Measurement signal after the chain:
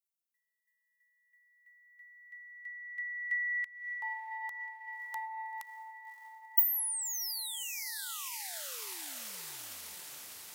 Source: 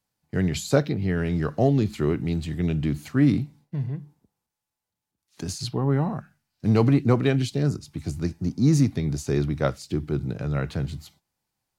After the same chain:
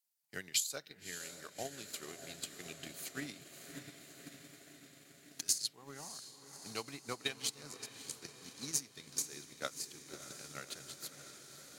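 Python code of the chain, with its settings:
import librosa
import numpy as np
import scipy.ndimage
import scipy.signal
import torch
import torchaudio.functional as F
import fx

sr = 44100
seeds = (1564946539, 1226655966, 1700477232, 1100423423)

y = np.diff(x, prepend=0.0)
y = fx.echo_diffused(y, sr, ms=597, feedback_pct=73, wet_db=-7.0)
y = fx.rider(y, sr, range_db=3, speed_s=2.0)
y = fx.transient(y, sr, attack_db=11, sustain_db=-6)
y = y * 10.0 ** (-4.5 / 20.0)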